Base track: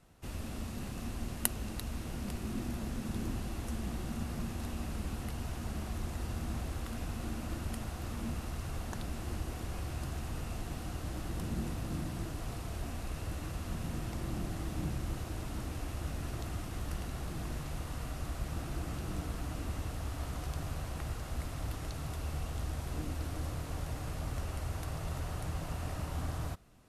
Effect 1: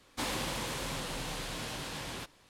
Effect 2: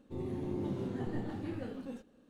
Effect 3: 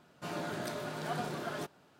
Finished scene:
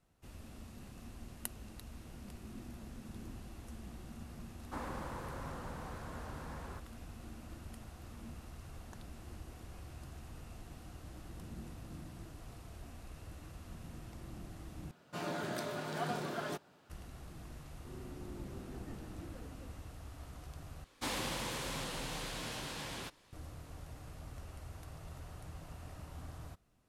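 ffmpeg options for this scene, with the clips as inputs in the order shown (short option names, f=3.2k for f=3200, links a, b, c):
-filter_complex "[1:a]asplit=2[a][b];[0:a]volume=-11dB[c];[a]highshelf=f=2k:t=q:w=1.5:g=-13[d];[c]asplit=3[e][f][g];[e]atrim=end=14.914[h];[3:a]atrim=end=1.99,asetpts=PTS-STARTPTS,volume=-1dB[i];[f]atrim=start=16.896:end=20.844[j];[b]atrim=end=2.49,asetpts=PTS-STARTPTS,volume=-3dB[k];[g]atrim=start=23.326[l];[d]atrim=end=2.49,asetpts=PTS-STARTPTS,volume=-7dB,afade=t=in:d=0.004:c=hsin,afade=t=out:st=2.486:d=0.004:c=hsin,adelay=4540[m];[2:a]atrim=end=2.29,asetpts=PTS-STARTPTS,volume=-12dB,afade=t=in:d=0.004:c=hsin,afade=t=out:st=2.286:d=0.004:c=hsin,adelay=17740[n];[h][i]acrossfade=d=0.004:c1=hsin:c2=hsin[o];[o][j]acrossfade=d=0.004:c1=hsin:c2=hsin[p];[p][k]acrossfade=d=0.004:c1=hsin:c2=hsin[q];[q][l]acrossfade=d=0.004:c1=hsin:c2=hsin[r];[r][m][n]amix=inputs=3:normalize=0"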